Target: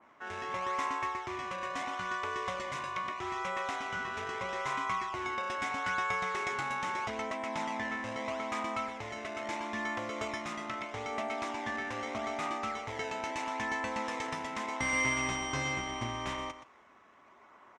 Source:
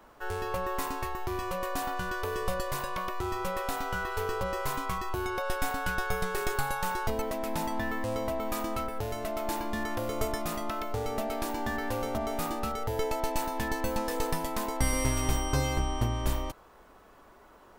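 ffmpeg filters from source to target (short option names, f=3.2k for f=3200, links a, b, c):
-filter_complex "[0:a]asplit=2[a][b];[b]acrusher=samples=23:mix=1:aa=0.000001:lfo=1:lforange=36.8:lforate=0.78,volume=-6.5dB[c];[a][c]amix=inputs=2:normalize=0,highpass=160,equalizer=f=170:t=q:w=4:g=-6,equalizer=f=310:t=q:w=4:g=-4,equalizer=f=470:t=q:w=4:g=-8,equalizer=f=1.1k:t=q:w=4:g=6,equalizer=f=2.1k:t=q:w=4:g=10,equalizer=f=4.5k:t=q:w=4:g=-9,lowpass=f=6.4k:w=0.5412,lowpass=f=6.4k:w=1.3066,aecho=1:1:123:0.282,adynamicequalizer=threshold=0.00794:dfrequency=2300:dqfactor=0.7:tfrequency=2300:tqfactor=0.7:attack=5:release=100:ratio=0.375:range=2.5:mode=boostabove:tftype=highshelf,volume=-6.5dB"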